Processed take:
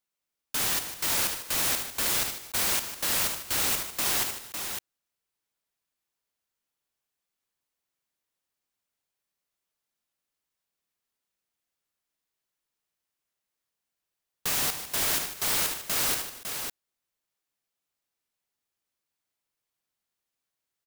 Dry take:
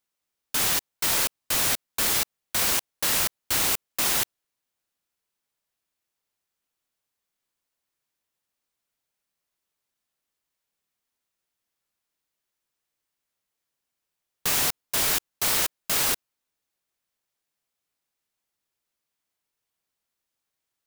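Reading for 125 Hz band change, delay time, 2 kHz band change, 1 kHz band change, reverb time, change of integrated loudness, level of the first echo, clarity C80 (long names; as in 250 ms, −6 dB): −2.5 dB, 53 ms, −2.5 dB, −2.5 dB, no reverb audible, −3.0 dB, −13.5 dB, no reverb audible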